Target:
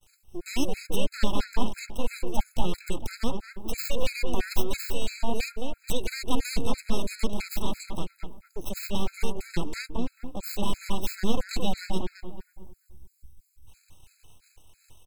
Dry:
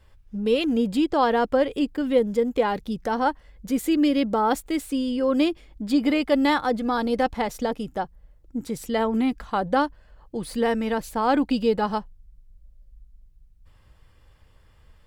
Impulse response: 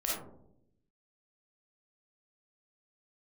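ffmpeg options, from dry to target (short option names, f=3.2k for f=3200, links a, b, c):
-filter_complex "[0:a]agate=range=-33dB:threshold=-51dB:ratio=3:detection=peak,asetrate=38170,aresample=44100,atempo=1.15535,crystalizer=i=8.5:c=0,aeval=exprs='abs(val(0))':c=same,superequalizer=6b=1.41:10b=0.501:11b=0.447,acrossover=split=300[a][b];[b]acompressor=threshold=-43dB:ratio=1.5[c];[a][c]amix=inputs=2:normalize=0,equalizer=f=7.6k:w=7.3:g=6.5,asplit=2[d][e];[e]adelay=220,lowpass=f=1.9k:p=1,volume=-4dB,asplit=2[f][g];[g]adelay=220,lowpass=f=1.9k:p=1,volume=0.42,asplit=2[h][i];[i]adelay=220,lowpass=f=1.9k:p=1,volume=0.42,asplit=2[j][k];[k]adelay=220,lowpass=f=1.9k:p=1,volume=0.42,asplit=2[l][m];[m]adelay=220,lowpass=f=1.9k:p=1,volume=0.42[n];[d][f][h][j][l][n]amix=inputs=6:normalize=0,afftfilt=real='re*gt(sin(2*PI*3*pts/sr)*(1-2*mod(floor(b*sr/1024/1300),2)),0)':imag='im*gt(sin(2*PI*3*pts/sr)*(1-2*mod(floor(b*sr/1024/1300),2)),0)':win_size=1024:overlap=0.75"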